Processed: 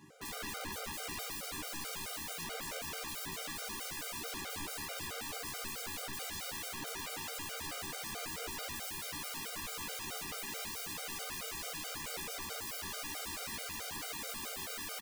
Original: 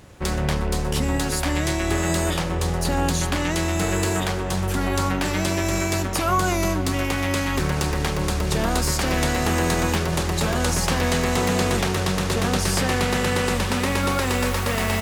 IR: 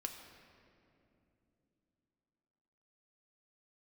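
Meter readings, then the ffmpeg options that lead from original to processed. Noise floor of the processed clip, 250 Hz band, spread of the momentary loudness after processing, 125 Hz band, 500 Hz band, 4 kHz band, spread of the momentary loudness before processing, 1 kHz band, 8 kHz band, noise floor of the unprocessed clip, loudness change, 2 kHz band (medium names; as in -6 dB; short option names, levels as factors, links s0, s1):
-43 dBFS, -27.0 dB, 1 LU, -31.0 dB, -23.5 dB, -13.5 dB, 3 LU, -19.5 dB, -13.0 dB, -25 dBFS, -17.0 dB, -17.0 dB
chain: -filter_complex "[0:a]highpass=f=130:w=0.5412,highpass=f=130:w=1.3066,alimiter=limit=0.15:level=0:latency=1:release=231,aeval=exprs='(mod(25.1*val(0)+1,2)-1)/25.1':c=same,asplit=2[s0][s1];[s1]adelay=13,volume=0.562[s2];[s0][s2]amix=inputs=2:normalize=0[s3];[1:a]atrim=start_sample=2205[s4];[s3][s4]afir=irnorm=-1:irlink=0,afftfilt=real='re*gt(sin(2*PI*4.6*pts/sr)*(1-2*mod(floor(b*sr/1024/400),2)),0)':imag='im*gt(sin(2*PI*4.6*pts/sr)*(1-2*mod(floor(b*sr/1024/400),2)),0)':win_size=1024:overlap=0.75,volume=0.562"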